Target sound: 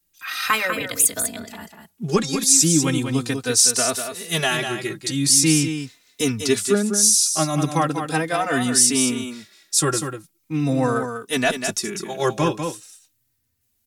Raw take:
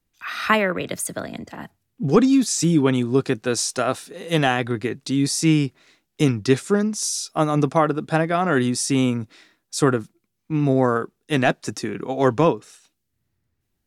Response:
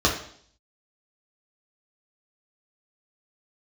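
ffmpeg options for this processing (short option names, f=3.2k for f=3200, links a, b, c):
-filter_complex "[0:a]aecho=1:1:196:0.422,crystalizer=i=4.5:c=0,asplit=2[a][b];[b]adelay=3.2,afreqshift=-0.4[c];[a][c]amix=inputs=2:normalize=1,volume=-1dB"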